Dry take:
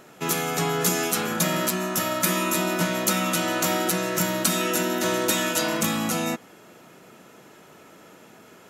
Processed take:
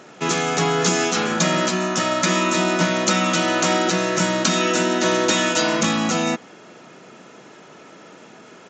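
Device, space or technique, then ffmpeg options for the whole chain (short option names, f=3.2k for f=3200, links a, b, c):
Bluetooth headset: -af "highpass=130,aresample=16000,aresample=44100,volume=5.5dB" -ar 16000 -c:a sbc -b:a 64k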